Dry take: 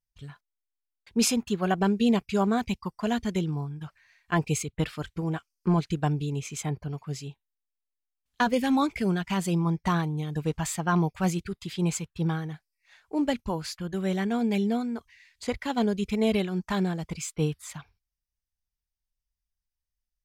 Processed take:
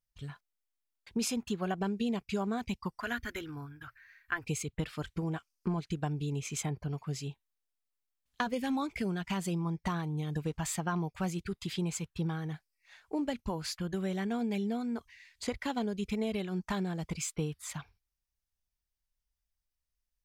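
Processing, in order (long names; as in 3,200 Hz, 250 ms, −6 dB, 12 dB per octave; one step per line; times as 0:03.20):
0:03.01–0:04.46: drawn EQ curve 120 Hz 0 dB, 180 Hz −29 dB, 260 Hz −3 dB, 380 Hz −11 dB, 910 Hz −9 dB, 1,500 Hz +8 dB, 2,800 Hz −4 dB, 8,900 Hz −8 dB, 13,000 Hz +6 dB
downward compressor 4 to 1, threshold −31 dBFS, peak gain reduction 10.5 dB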